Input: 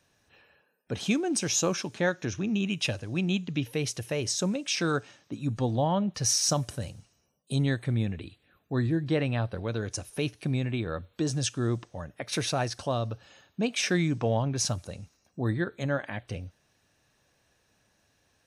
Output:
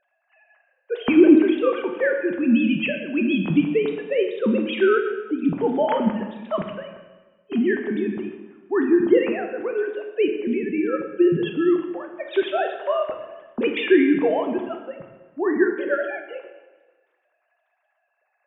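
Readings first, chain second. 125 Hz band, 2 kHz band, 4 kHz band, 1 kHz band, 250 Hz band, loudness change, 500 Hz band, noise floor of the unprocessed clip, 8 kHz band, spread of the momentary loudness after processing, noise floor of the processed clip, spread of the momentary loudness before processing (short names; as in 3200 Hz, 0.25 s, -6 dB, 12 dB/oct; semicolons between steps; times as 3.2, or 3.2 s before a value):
-7.5 dB, +7.0 dB, -3.0 dB, +6.0 dB, +10.5 dB, +8.0 dB, +12.0 dB, -71 dBFS, under -40 dB, 15 LU, -72 dBFS, 12 LU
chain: sine-wave speech; bell 380 Hz +8 dB 0.38 oct; plate-style reverb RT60 1.3 s, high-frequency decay 0.95×, DRR 3.5 dB; mismatched tape noise reduction decoder only; gain +4 dB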